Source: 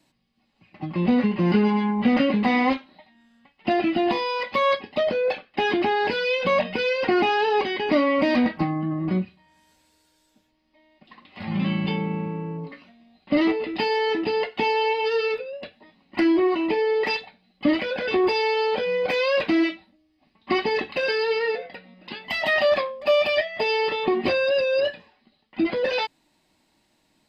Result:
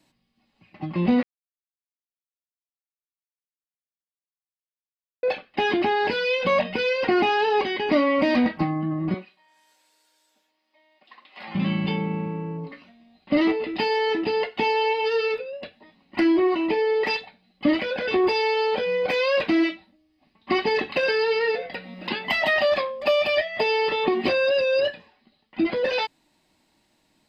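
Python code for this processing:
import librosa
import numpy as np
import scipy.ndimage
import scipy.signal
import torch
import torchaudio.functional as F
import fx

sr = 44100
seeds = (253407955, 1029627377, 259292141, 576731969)

y = fx.highpass(x, sr, hz=540.0, slope=12, at=(9.14, 11.55))
y = fx.band_squash(y, sr, depth_pct=70, at=(20.67, 24.88))
y = fx.edit(y, sr, fx.silence(start_s=1.23, length_s=4.0), tone=tone)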